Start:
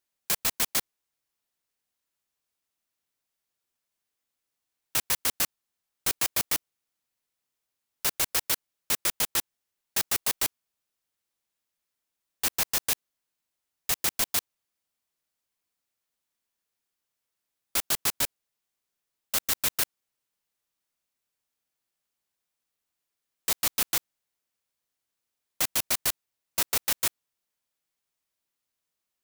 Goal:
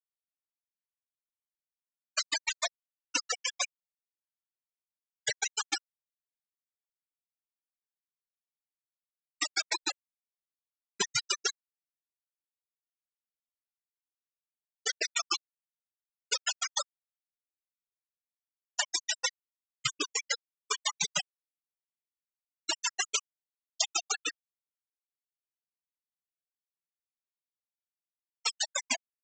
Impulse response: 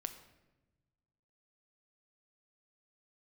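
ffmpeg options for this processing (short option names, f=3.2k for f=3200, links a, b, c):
-af "areverse,aderivative,aeval=exprs='0.447*sin(PI/2*7.08*val(0)/0.447)':c=same,lowshelf=f=200:g=-5.5,acompressor=threshold=-14dB:ratio=10,afftfilt=real='re*gte(hypot(re,im),0.2)':imag='im*gte(hypot(re,im),0.2)':win_size=1024:overlap=0.75,aresample=16000,aresample=44100"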